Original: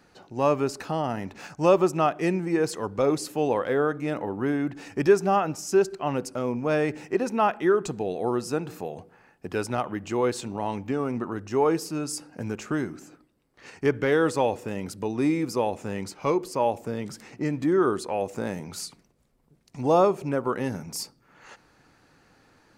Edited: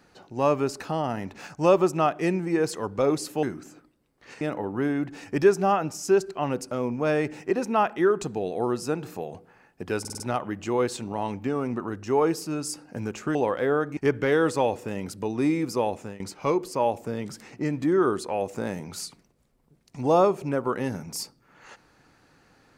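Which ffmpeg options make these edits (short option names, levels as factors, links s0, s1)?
-filter_complex "[0:a]asplit=10[s0][s1][s2][s3][s4][s5][s6][s7][s8][s9];[s0]atrim=end=3.432[s10];[s1]atrim=start=12.788:end=13.772[s11];[s2]atrim=start=4.048:end=9.692[s12];[s3]atrim=start=9.638:end=9.692[s13];[s4]atrim=start=9.638:end=9.692[s14];[s5]atrim=start=9.638:end=9.692[s15];[s6]atrim=start=9.638:end=12.792[s16];[s7]atrim=start=3.428:end=4.052[s17];[s8]atrim=start=13.768:end=16,asetpts=PTS-STARTPTS,afade=t=out:st=1.912:d=0.32:c=qsin:silence=0.0891251[s18];[s9]atrim=start=16,asetpts=PTS-STARTPTS,afade=t=in:d=0.004:c=hsin:silence=0.0891251[s19];[s10][s11]acrossfade=d=0.004:c1=hsin:c2=hsin[s20];[s20][s12]acrossfade=d=0.004:c1=hsin:c2=hsin[s21];[s21][s13]acrossfade=d=0.004:c1=hsin:c2=hsin[s22];[s22][s14]acrossfade=d=0.004:c1=hsin:c2=hsin[s23];[s23][s15]acrossfade=d=0.004:c1=hsin:c2=hsin[s24];[s24][s16]acrossfade=d=0.004:c1=hsin:c2=hsin[s25];[s25][s17]acrossfade=d=0.004:c1=hsin:c2=hsin[s26];[s18][s19]concat=n=2:v=0:a=1[s27];[s26][s27]acrossfade=d=0.004:c1=hsin:c2=hsin"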